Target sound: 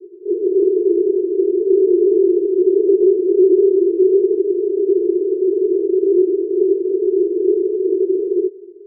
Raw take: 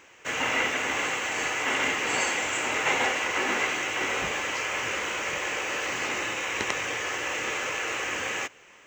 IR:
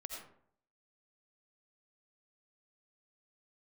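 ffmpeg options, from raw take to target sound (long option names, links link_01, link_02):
-filter_complex "[0:a]asuperpass=centerf=380:order=8:qfactor=4.7,asplit=2[link_01][link_02];[1:a]atrim=start_sample=2205[link_03];[link_02][link_03]afir=irnorm=-1:irlink=0,volume=-16.5dB[link_04];[link_01][link_04]amix=inputs=2:normalize=0,alimiter=level_in=34.5dB:limit=-1dB:release=50:level=0:latency=1,volume=-4.5dB"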